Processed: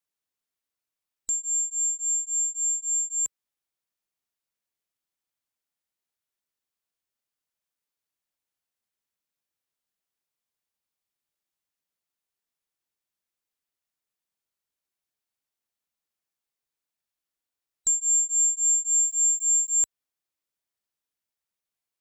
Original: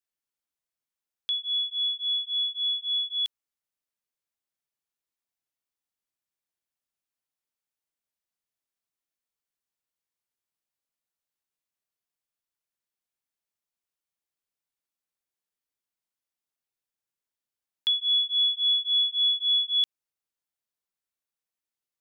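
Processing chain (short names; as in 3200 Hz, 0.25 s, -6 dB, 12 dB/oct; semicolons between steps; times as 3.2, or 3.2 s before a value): band-swap scrambler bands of 4000 Hz; 18.93–19.79 sample gate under -45.5 dBFS; gain +1.5 dB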